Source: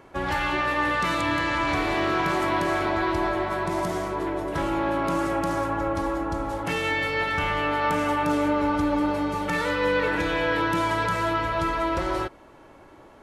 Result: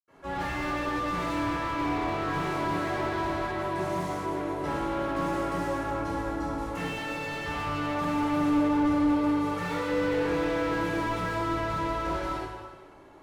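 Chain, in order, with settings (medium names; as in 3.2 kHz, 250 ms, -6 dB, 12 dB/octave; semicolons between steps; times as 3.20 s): 1.35–2.24 s: distance through air 190 m; reverberation RT60 1.3 s, pre-delay 77 ms; slew-rate limiter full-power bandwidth 110 Hz; trim -8.5 dB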